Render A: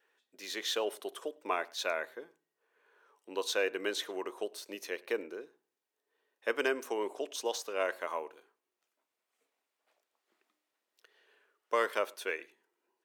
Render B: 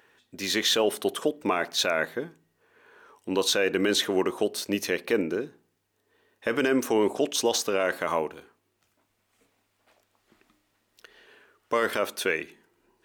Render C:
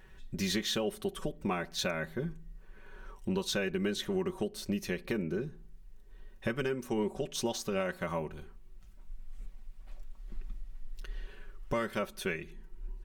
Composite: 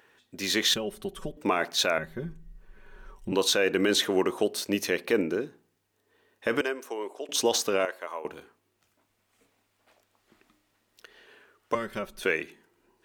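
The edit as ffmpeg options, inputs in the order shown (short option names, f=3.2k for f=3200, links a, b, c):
-filter_complex "[2:a]asplit=3[a][b][c];[0:a]asplit=2[d][e];[1:a]asplit=6[f][g][h][i][j][k];[f]atrim=end=0.742[l];[a]atrim=start=0.738:end=1.372[m];[g]atrim=start=1.368:end=1.982[n];[b]atrim=start=1.978:end=3.322[o];[h]atrim=start=3.318:end=6.612[p];[d]atrim=start=6.608:end=7.292[q];[i]atrim=start=7.288:end=7.852[r];[e]atrim=start=7.848:end=8.252[s];[j]atrim=start=8.248:end=11.752[t];[c]atrim=start=11.748:end=12.232[u];[k]atrim=start=12.228[v];[l][m]acrossfade=d=0.004:c1=hsin:c2=hsin[w];[w][n]acrossfade=d=0.004:c1=hsin:c2=hsin[x];[x][o]acrossfade=d=0.004:c1=hsin:c2=hsin[y];[y][p]acrossfade=d=0.004:c1=hsin:c2=hsin[z];[z][q]acrossfade=d=0.004:c1=hsin:c2=hsin[aa];[aa][r]acrossfade=d=0.004:c1=hsin:c2=hsin[ab];[ab][s]acrossfade=d=0.004:c1=hsin:c2=hsin[ac];[ac][t]acrossfade=d=0.004:c1=hsin:c2=hsin[ad];[ad][u]acrossfade=d=0.004:c1=hsin:c2=hsin[ae];[ae][v]acrossfade=d=0.004:c1=hsin:c2=hsin"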